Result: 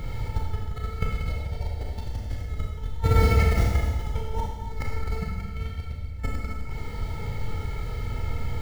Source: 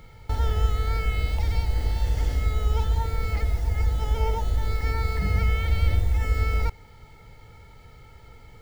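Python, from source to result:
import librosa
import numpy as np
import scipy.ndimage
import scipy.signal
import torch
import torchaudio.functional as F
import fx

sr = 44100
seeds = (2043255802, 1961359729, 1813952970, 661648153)

p1 = fx.tracing_dist(x, sr, depth_ms=0.032)
p2 = fx.peak_eq(p1, sr, hz=580.0, db=11.0, octaves=0.85, at=(1.29, 1.85))
p3 = fx.highpass(p2, sr, hz=63.0, slope=24, at=(3.05, 3.9))
p4 = fx.low_shelf(p3, sr, hz=340.0, db=7.0)
p5 = fx.over_compress(p4, sr, threshold_db=-25.0, ratio=-0.5)
p6 = p5 + fx.echo_single(p5, sr, ms=257, db=-12.0, dry=0)
p7 = fx.rev_schroeder(p6, sr, rt60_s=1.1, comb_ms=26, drr_db=-1.5)
y = F.gain(torch.from_numpy(p7), -2.0).numpy()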